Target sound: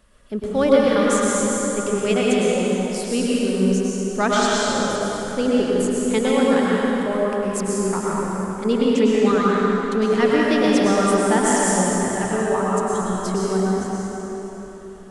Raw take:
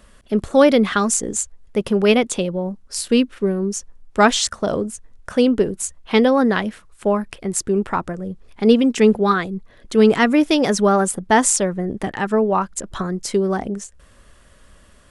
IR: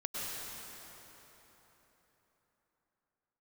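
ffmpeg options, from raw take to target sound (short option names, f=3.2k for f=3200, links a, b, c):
-filter_complex "[1:a]atrim=start_sample=2205[a];[0:a][a]afir=irnorm=-1:irlink=0,volume=-5dB"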